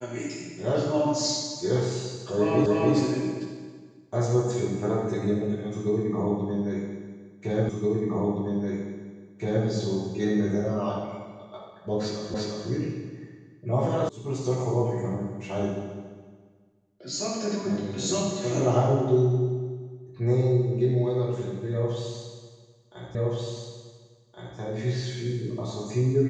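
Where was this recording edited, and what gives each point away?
2.66 repeat of the last 0.29 s
7.69 repeat of the last 1.97 s
12.34 repeat of the last 0.35 s
14.09 sound cut off
23.15 repeat of the last 1.42 s

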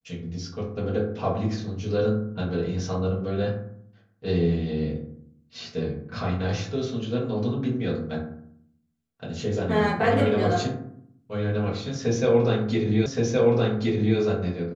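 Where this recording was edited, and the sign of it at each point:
13.06 repeat of the last 1.12 s

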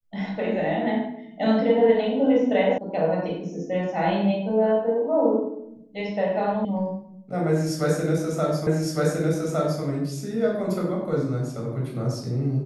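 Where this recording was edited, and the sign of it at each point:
2.78 sound cut off
6.65 sound cut off
8.67 repeat of the last 1.16 s

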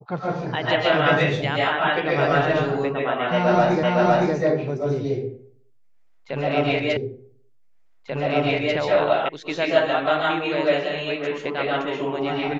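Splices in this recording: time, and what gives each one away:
3.83 repeat of the last 0.51 s
6.97 repeat of the last 1.79 s
9.29 sound cut off

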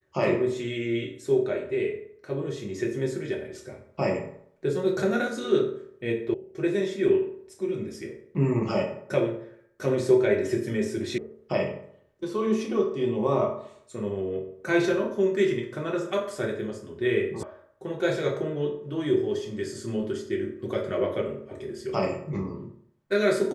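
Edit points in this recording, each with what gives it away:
6.34 sound cut off
11.18 sound cut off
17.43 sound cut off

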